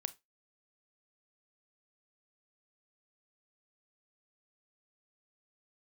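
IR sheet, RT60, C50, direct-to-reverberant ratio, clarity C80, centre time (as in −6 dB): 0.20 s, 20.5 dB, 13.5 dB, 29.0 dB, 2 ms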